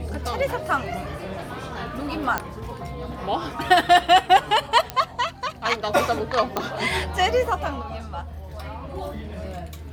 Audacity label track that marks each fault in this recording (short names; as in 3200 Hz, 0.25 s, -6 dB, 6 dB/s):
2.380000	2.380000	pop -8 dBFS
4.900000	4.900000	pop -11 dBFS
6.570000	6.570000	pop -9 dBFS